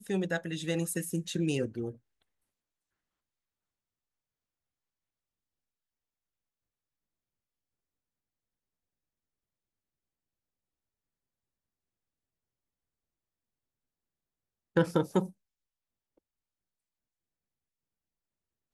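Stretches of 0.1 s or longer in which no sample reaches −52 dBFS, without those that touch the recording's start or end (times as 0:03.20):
0:01.97–0:14.76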